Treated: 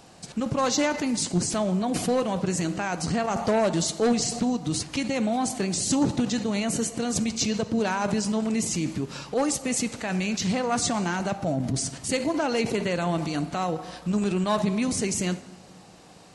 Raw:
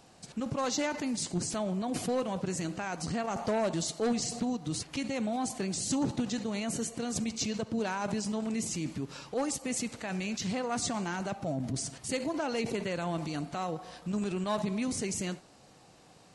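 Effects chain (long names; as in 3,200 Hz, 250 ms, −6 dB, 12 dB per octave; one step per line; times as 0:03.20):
convolution reverb RT60 1.4 s, pre-delay 8 ms, DRR 15 dB
level +7 dB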